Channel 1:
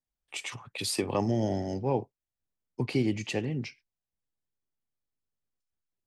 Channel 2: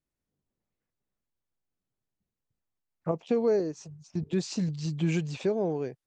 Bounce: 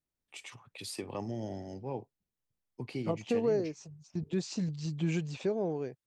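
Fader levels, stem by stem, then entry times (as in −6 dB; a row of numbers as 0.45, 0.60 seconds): −10.0, −4.0 decibels; 0.00, 0.00 seconds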